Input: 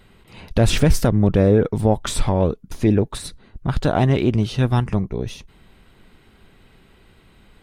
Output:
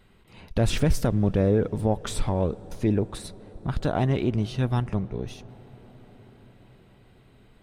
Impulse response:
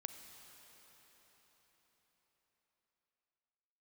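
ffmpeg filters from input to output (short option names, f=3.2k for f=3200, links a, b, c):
-filter_complex "[0:a]asplit=2[a][b];[1:a]atrim=start_sample=2205,asetrate=26019,aresample=44100,highshelf=f=2.7k:g=-12[c];[b][c]afir=irnorm=-1:irlink=0,volume=-10dB[d];[a][d]amix=inputs=2:normalize=0,volume=-8.5dB"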